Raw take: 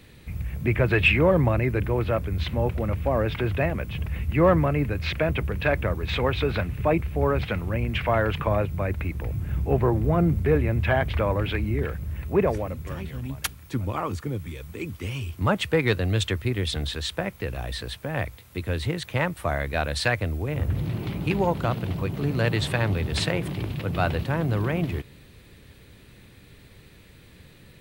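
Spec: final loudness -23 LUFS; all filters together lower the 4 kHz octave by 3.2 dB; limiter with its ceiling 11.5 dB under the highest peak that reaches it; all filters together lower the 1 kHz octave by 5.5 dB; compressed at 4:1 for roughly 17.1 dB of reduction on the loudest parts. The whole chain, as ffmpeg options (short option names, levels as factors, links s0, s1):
-af "equalizer=f=1000:t=o:g=-7.5,equalizer=f=4000:t=o:g=-3.5,acompressor=threshold=0.0126:ratio=4,volume=11.2,alimiter=limit=0.2:level=0:latency=1"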